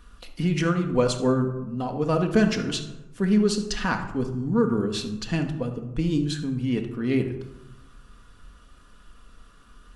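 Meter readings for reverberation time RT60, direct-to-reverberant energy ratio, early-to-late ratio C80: 1.0 s, 4.0 dB, 11.0 dB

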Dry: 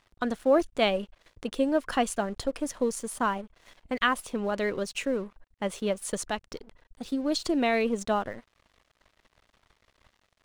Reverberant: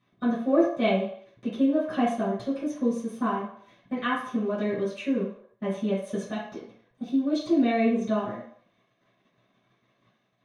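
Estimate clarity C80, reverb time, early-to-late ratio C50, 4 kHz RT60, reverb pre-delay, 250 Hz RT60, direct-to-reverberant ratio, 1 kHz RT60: 8.0 dB, 0.60 s, 3.5 dB, 0.65 s, 3 ms, 0.40 s, −12.5 dB, 0.60 s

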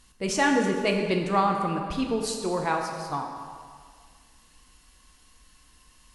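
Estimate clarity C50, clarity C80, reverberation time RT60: 4.5 dB, 5.5 dB, 1.9 s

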